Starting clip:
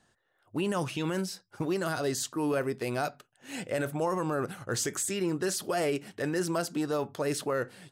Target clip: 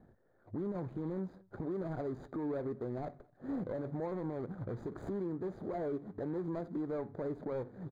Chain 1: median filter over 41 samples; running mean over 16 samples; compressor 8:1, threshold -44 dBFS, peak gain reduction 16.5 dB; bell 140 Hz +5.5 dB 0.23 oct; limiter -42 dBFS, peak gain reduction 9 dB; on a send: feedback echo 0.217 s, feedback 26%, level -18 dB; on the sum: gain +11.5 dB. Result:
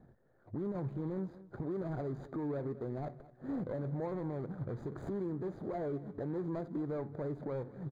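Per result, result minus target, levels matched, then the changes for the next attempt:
echo-to-direct +11 dB; 125 Hz band +3.0 dB
change: feedback echo 0.217 s, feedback 26%, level -28.5 dB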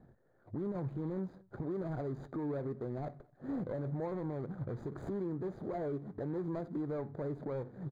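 125 Hz band +3.0 dB
change: bell 140 Hz -3 dB 0.23 oct

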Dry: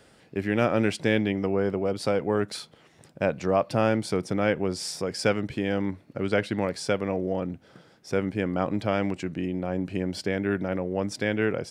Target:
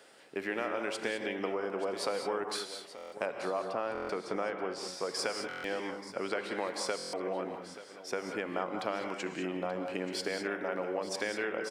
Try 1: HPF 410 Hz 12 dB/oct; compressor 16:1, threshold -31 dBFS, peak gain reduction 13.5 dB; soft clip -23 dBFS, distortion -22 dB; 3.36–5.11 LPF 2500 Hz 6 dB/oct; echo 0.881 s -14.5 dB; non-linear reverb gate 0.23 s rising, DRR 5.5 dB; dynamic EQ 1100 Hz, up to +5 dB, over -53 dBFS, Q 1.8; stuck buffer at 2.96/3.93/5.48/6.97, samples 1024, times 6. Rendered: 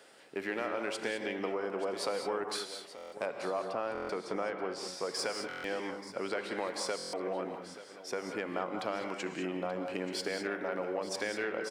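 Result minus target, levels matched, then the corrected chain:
soft clip: distortion +18 dB
HPF 410 Hz 12 dB/oct; compressor 16:1, threshold -31 dBFS, peak gain reduction 13.5 dB; soft clip -12.5 dBFS, distortion -40 dB; 3.36–5.11 LPF 2500 Hz 6 dB/oct; echo 0.881 s -14.5 dB; non-linear reverb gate 0.23 s rising, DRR 5.5 dB; dynamic EQ 1100 Hz, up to +5 dB, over -53 dBFS, Q 1.8; stuck buffer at 2.96/3.93/5.48/6.97, samples 1024, times 6

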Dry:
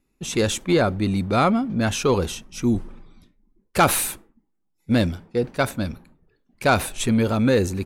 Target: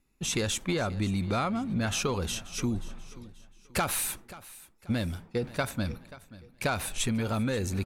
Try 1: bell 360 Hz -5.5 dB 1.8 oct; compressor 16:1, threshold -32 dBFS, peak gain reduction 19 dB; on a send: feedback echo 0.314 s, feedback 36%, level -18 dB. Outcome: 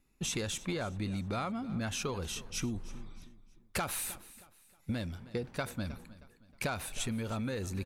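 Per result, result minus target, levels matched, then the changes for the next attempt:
echo 0.219 s early; compressor: peak gain reduction +6.5 dB
change: feedback echo 0.533 s, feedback 36%, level -18 dB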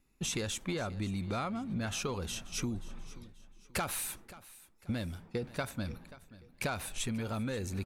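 compressor: peak gain reduction +6.5 dB
change: compressor 16:1, threshold -25 dBFS, peak gain reduction 12.5 dB

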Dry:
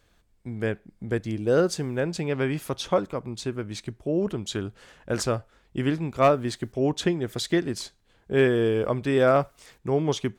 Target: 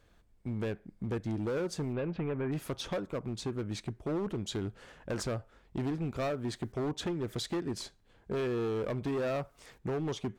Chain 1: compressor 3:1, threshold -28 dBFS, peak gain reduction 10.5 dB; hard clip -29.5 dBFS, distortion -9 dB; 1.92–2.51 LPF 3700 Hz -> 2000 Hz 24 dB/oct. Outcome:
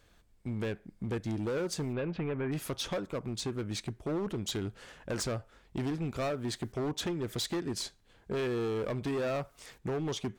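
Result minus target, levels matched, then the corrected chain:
4000 Hz band +3.5 dB
compressor 3:1, threshold -28 dBFS, peak gain reduction 10.5 dB; high shelf 2100 Hz -6.5 dB; hard clip -29.5 dBFS, distortion -10 dB; 1.92–2.51 LPF 3700 Hz -> 2000 Hz 24 dB/oct

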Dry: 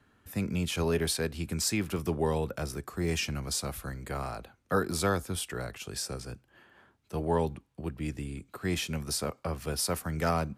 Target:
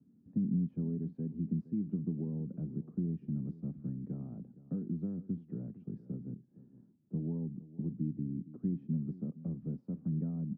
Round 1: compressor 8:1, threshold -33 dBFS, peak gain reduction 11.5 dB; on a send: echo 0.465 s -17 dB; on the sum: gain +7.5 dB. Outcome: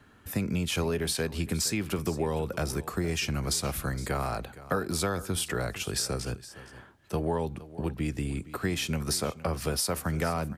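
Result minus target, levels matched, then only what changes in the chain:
250 Hz band -5.5 dB
add after compressor: Butterworth band-pass 200 Hz, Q 1.7

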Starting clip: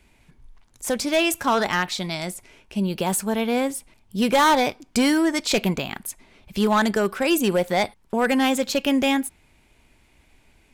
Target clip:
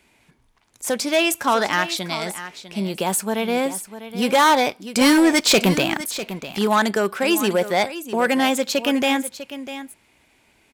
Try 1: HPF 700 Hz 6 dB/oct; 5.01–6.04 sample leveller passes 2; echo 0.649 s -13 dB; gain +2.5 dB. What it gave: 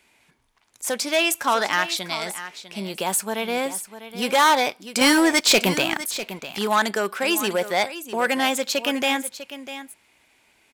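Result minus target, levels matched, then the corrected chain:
250 Hz band -3.5 dB
HPF 250 Hz 6 dB/oct; 5.01–6.04 sample leveller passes 2; echo 0.649 s -13 dB; gain +2.5 dB

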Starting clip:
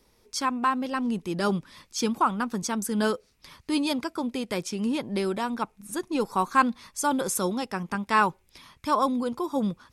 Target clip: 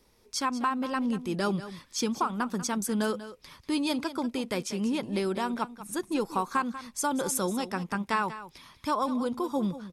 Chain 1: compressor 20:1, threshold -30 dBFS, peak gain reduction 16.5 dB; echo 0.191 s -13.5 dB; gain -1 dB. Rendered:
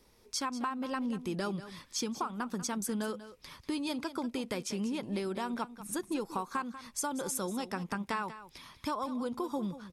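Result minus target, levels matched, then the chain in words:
compressor: peak gain reduction +7.5 dB
compressor 20:1, threshold -22 dBFS, peak gain reduction 9 dB; echo 0.191 s -13.5 dB; gain -1 dB

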